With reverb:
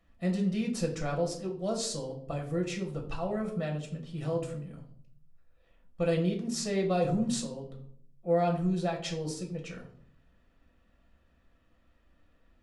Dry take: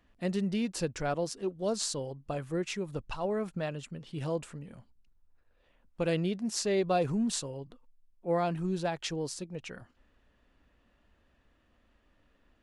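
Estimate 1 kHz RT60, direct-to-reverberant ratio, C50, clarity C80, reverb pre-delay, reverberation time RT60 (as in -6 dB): 0.50 s, 0.5 dB, 9.5 dB, 13.0 dB, 5 ms, 0.60 s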